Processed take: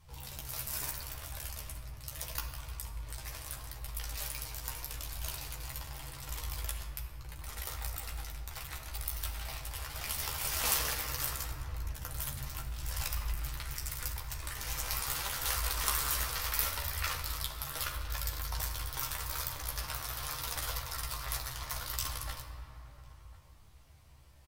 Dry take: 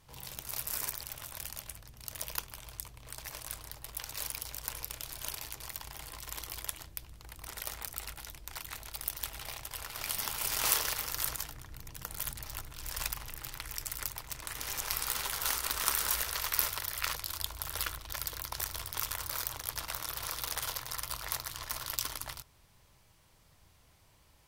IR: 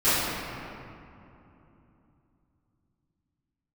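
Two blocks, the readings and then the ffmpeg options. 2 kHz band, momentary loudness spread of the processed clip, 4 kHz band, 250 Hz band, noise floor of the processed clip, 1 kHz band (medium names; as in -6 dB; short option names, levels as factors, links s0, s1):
-0.5 dB, 12 LU, -1.0 dB, +1.5 dB, -54 dBFS, 0.0 dB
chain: -filter_complex "[0:a]equalizer=f=67:t=o:w=1:g=13,flanger=delay=0.8:depth=8.6:regen=30:speed=0.77:shape=triangular,asplit=2[s0][s1];[s1]adelay=14,volume=0.631[s2];[s0][s2]amix=inputs=2:normalize=0,asplit=2[s3][s4];[s4]adelay=1050,volume=0.112,highshelf=f=4000:g=-23.6[s5];[s3][s5]amix=inputs=2:normalize=0,asplit=2[s6][s7];[1:a]atrim=start_sample=2205[s8];[s7][s8]afir=irnorm=-1:irlink=0,volume=0.0794[s9];[s6][s9]amix=inputs=2:normalize=0"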